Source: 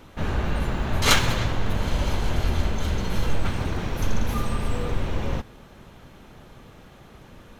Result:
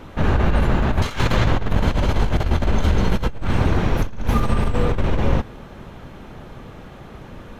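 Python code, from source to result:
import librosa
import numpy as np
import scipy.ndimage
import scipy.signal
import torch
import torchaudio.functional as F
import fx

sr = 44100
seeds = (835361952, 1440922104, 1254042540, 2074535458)

y = fx.over_compress(x, sr, threshold_db=-23.0, ratio=-0.5)
y = fx.high_shelf(y, sr, hz=3400.0, db=-9.5)
y = y * librosa.db_to_amplitude(7.0)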